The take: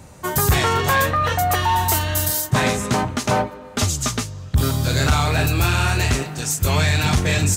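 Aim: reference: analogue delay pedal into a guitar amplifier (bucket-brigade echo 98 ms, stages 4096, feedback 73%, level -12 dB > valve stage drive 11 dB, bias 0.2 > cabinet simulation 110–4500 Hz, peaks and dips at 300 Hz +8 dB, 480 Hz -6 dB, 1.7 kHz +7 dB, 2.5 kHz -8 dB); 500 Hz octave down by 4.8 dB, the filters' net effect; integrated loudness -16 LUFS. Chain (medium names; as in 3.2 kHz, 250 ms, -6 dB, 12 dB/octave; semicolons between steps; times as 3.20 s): peaking EQ 500 Hz -5 dB; bucket-brigade echo 98 ms, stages 4096, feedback 73%, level -12 dB; valve stage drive 11 dB, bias 0.2; cabinet simulation 110–4500 Hz, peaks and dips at 300 Hz +8 dB, 480 Hz -6 dB, 1.7 kHz +7 dB, 2.5 kHz -8 dB; trim +6 dB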